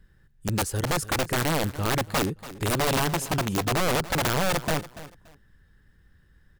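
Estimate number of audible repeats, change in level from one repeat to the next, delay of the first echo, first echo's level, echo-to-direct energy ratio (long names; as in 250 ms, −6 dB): 2, −12.5 dB, 286 ms, −16.0 dB, −16.0 dB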